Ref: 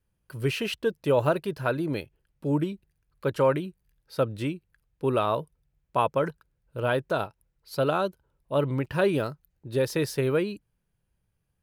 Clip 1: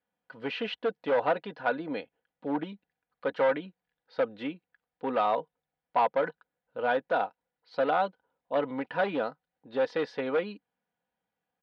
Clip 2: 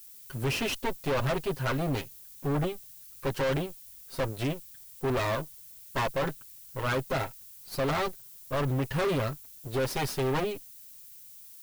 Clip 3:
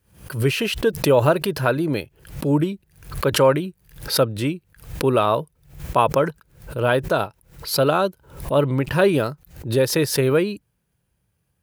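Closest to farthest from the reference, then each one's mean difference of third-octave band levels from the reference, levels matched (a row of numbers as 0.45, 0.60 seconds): 3, 1, 2; 2.5, 7.0, 9.0 decibels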